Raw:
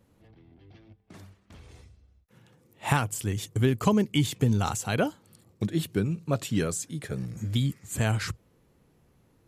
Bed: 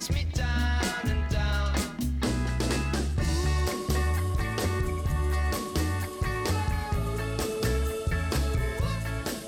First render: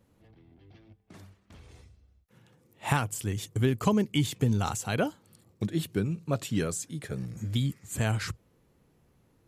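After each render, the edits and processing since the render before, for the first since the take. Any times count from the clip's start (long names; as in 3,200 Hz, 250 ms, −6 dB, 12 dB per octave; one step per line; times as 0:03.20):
level −2 dB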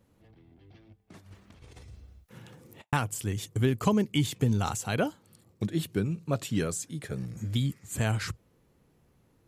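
0:01.18–0:02.93: compressor whose output falls as the input rises −55 dBFS, ratio −0.5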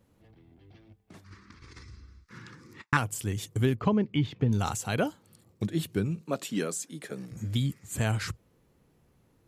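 0:01.24–0:02.97: drawn EQ curve 150 Hz 0 dB, 340 Hz +4 dB, 690 Hz −16 dB, 1,100 Hz +9 dB, 2,100 Hz +8 dB, 3,000 Hz −3 dB, 4,900 Hz +10 dB, 12,000 Hz −13 dB
0:03.75–0:04.53: high-frequency loss of the air 280 metres
0:06.21–0:07.32: high-pass filter 190 Hz 24 dB per octave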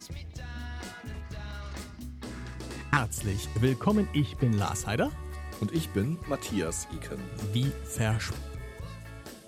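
mix in bed −12.5 dB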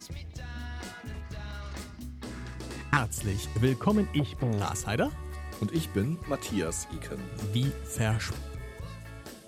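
0:04.19–0:04.87: saturating transformer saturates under 360 Hz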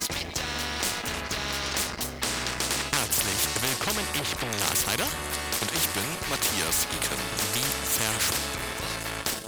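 leveller curve on the samples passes 2
every bin compressed towards the loudest bin 4 to 1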